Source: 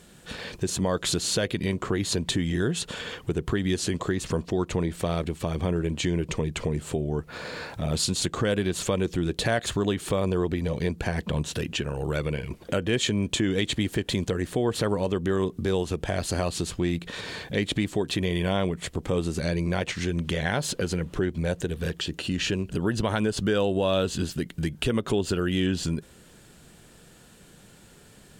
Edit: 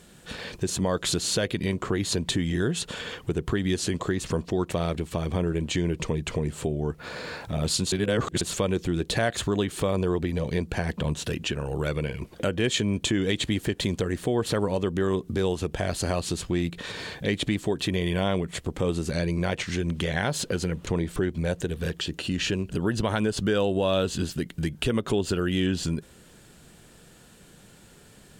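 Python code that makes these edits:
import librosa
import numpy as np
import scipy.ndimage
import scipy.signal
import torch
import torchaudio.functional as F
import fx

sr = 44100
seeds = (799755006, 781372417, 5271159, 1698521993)

y = fx.edit(x, sr, fx.move(start_s=4.71, length_s=0.29, to_s=21.16),
    fx.reverse_span(start_s=8.21, length_s=0.49), tone=tone)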